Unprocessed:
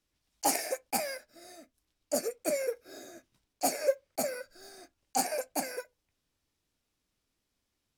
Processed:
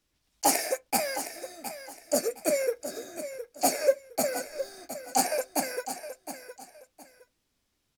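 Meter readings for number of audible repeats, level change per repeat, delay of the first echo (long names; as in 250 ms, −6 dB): 2, −11.5 dB, 714 ms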